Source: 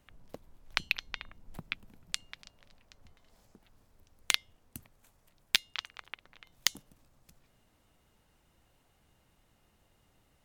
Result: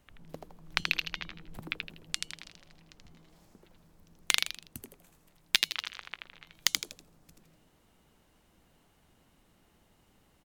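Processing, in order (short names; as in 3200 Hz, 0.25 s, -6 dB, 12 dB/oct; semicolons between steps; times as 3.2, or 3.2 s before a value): frequency-shifting echo 81 ms, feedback 35%, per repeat +150 Hz, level -4 dB; gain +1 dB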